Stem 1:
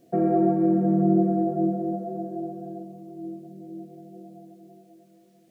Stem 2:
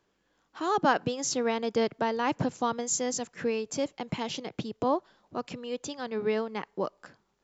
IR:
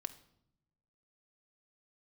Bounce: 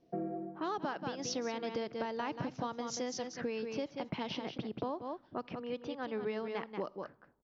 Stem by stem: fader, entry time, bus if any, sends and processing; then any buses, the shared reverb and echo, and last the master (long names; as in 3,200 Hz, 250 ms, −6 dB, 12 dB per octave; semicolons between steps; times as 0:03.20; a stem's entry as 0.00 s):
−10.0 dB, 0.00 s, no send, no echo send, automatic ducking −16 dB, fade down 0.35 s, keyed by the second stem
−4.0 dB, 0.00 s, send −7.5 dB, echo send −6.5 dB, low-pass that shuts in the quiet parts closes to 640 Hz, open at −25 dBFS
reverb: on, RT60 0.75 s, pre-delay 3 ms
echo: single-tap delay 183 ms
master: elliptic low-pass filter 5,800 Hz, stop band 40 dB; downward compressor 12 to 1, threshold −33 dBFS, peak gain reduction 14 dB